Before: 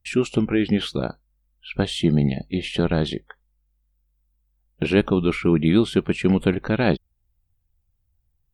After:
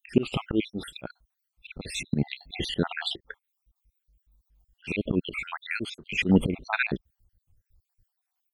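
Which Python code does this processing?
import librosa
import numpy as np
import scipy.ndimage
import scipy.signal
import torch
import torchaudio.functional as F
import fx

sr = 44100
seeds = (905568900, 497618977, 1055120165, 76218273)

y = fx.spec_dropout(x, sr, seeds[0], share_pct=64)
y = fx.dynamic_eq(y, sr, hz=260.0, q=2.5, threshold_db=-31.0, ratio=4.0, max_db=3)
y = fx.auto_swell(y, sr, attack_ms=212.0)
y = F.gain(torch.from_numpy(y), 6.0).numpy()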